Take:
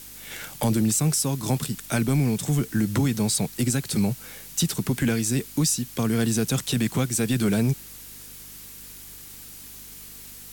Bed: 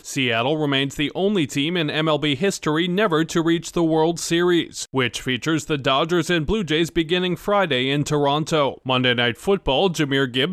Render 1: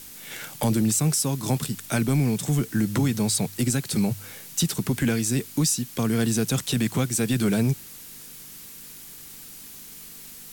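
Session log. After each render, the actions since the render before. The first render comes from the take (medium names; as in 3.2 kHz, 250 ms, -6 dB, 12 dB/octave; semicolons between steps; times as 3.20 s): de-hum 50 Hz, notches 2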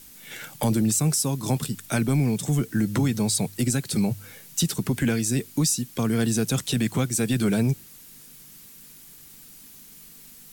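noise reduction 6 dB, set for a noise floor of -43 dBFS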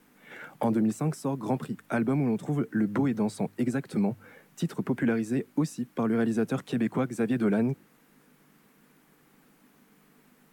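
three-band isolator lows -19 dB, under 170 Hz, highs -22 dB, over 2 kHz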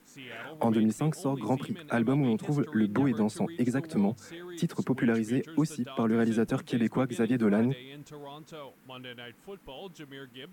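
add bed -25 dB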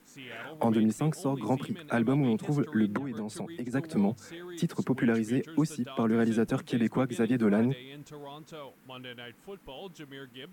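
2.97–3.73 s: compression, threshold -32 dBFS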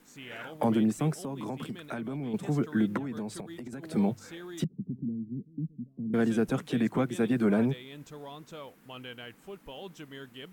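1.11–2.34 s: compression, threshold -32 dBFS; 3.40–3.83 s: compression 16:1, threshold -36 dBFS; 4.64–6.14 s: four-pole ladder low-pass 250 Hz, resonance 35%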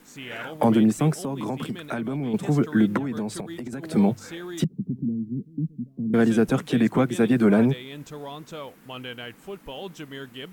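trim +7 dB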